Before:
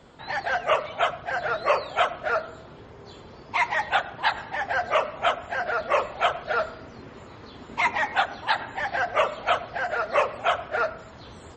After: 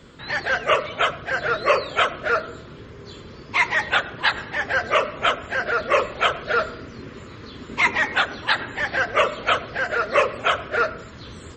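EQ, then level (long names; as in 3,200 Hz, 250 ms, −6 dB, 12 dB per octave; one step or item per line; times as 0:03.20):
parametric band 750 Hz −13.5 dB 0.65 octaves
notch filter 920 Hz, Q 22
dynamic equaliser 450 Hz, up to +4 dB, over −46 dBFS, Q 1.1
+6.5 dB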